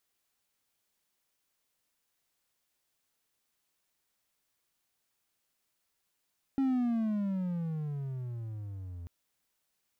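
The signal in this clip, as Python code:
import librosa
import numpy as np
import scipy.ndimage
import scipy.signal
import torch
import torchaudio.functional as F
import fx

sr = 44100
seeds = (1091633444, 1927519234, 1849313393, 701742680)

y = fx.riser_tone(sr, length_s=2.49, level_db=-23.0, wave='triangle', hz=274.0, rise_st=-20.5, swell_db=-15)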